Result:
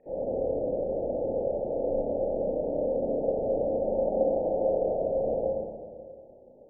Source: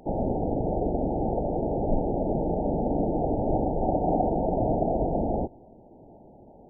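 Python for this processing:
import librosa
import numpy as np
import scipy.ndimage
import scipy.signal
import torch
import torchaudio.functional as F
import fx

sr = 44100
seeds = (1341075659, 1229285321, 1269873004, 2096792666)

y = fx.formant_cascade(x, sr, vowel='e')
y = fx.rev_schroeder(y, sr, rt60_s=1.9, comb_ms=28, drr_db=-7.5)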